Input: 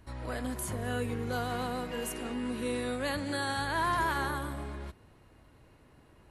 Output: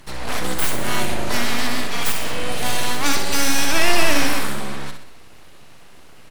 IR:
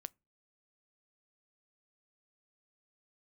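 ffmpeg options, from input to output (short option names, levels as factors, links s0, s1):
-filter_complex "[0:a]equalizer=f=5600:w=0.3:g=10,aeval=exprs='abs(val(0))':c=same,aecho=1:1:63|126|189|252|315|378:0.447|0.214|0.103|0.0494|0.0237|0.0114,asplit=2[s0][s1];[1:a]atrim=start_sample=2205[s2];[s1][s2]afir=irnorm=-1:irlink=0,volume=4.47[s3];[s0][s3]amix=inputs=2:normalize=0"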